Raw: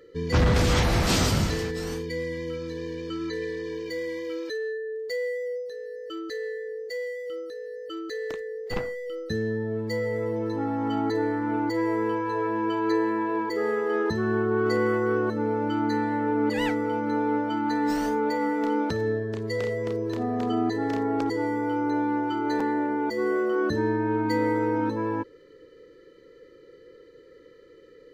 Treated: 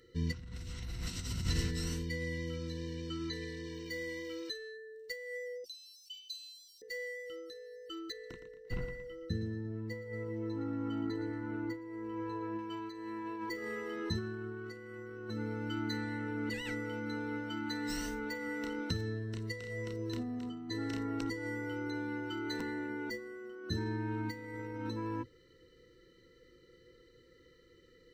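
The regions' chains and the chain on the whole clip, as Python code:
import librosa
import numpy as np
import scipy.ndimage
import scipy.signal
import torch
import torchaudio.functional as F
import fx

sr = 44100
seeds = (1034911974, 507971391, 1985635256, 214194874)

y = fx.chain(x, sr, fx.brickwall_highpass(low_hz=2300.0),
    fx.env_flatten(amount_pct=50), at=(5.64, 6.82))
y = fx.chain(y, sr, fx.high_shelf(hz=2000.0, db=-12.0),
    fx.echo_feedback(ms=115, feedback_pct=38, wet_db=-10.5), at=(8.12, 12.59))
y = fx.ripple_eq(y, sr, per_octave=2.0, db=9)
y = fx.over_compress(y, sr, threshold_db=-26.0, ratio=-0.5)
y = fx.tone_stack(y, sr, knobs='6-0-2')
y = y * librosa.db_to_amplitude(10.5)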